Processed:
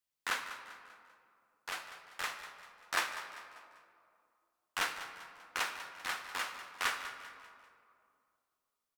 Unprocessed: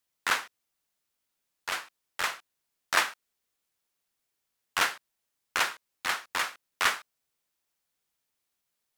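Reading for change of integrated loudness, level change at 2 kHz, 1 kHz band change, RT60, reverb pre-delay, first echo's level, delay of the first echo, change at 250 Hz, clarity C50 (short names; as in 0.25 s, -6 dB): -8.5 dB, -7.5 dB, -7.0 dB, 2.4 s, 3 ms, -13.5 dB, 0.196 s, -7.0 dB, 7.0 dB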